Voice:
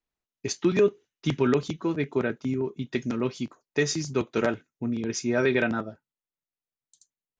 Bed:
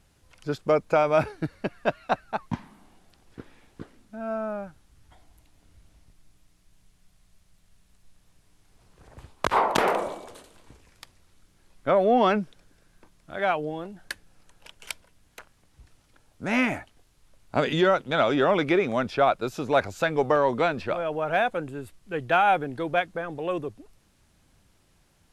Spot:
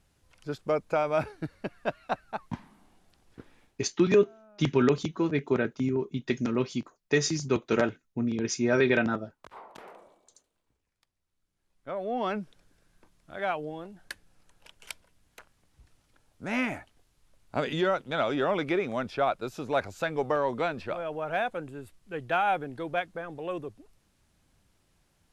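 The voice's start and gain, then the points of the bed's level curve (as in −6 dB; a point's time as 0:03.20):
3.35 s, 0.0 dB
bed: 0:03.63 −5.5 dB
0:03.97 −25.5 dB
0:11.13 −25.5 dB
0:12.53 −5.5 dB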